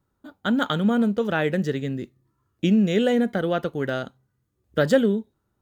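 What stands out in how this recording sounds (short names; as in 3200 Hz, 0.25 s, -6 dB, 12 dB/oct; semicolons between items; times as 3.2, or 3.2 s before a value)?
noise floor -75 dBFS; spectral tilt -5.5 dB/oct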